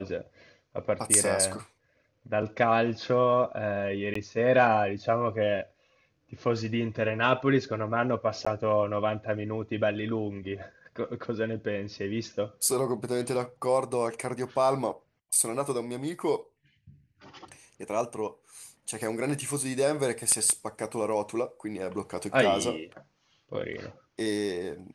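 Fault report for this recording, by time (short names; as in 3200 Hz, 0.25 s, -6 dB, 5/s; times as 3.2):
4.14–4.15 gap 14 ms
8.45–8.46 gap 15 ms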